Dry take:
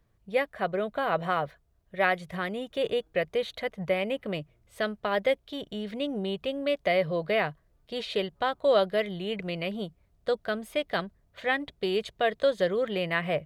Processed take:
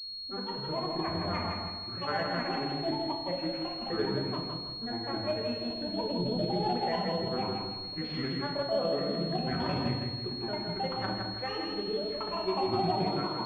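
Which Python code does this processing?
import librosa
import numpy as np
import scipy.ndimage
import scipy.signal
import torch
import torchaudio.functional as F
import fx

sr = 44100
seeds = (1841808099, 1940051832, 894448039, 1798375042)

p1 = fx.over_compress(x, sr, threshold_db=-32.0, ratio=-1.0)
p2 = x + F.gain(torch.from_numpy(p1), -2.0).numpy()
p3 = fx.rotary_switch(p2, sr, hz=8.0, then_hz=0.7, switch_at_s=1.96)
p4 = fx.granulator(p3, sr, seeds[0], grain_ms=100.0, per_s=20.0, spray_ms=100.0, spread_st=12)
p5 = p4 + fx.echo_feedback(p4, sr, ms=162, feedback_pct=41, wet_db=-4.0, dry=0)
p6 = fx.room_shoebox(p5, sr, seeds[1], volume_m3=210.0, walls='mixed', distance_m=1.1)
p7 = fx.pwm(p6, sr, carrier_hz=4300.0)
y = F.gain(torch.from_numpy(p7), -8.0).numpy()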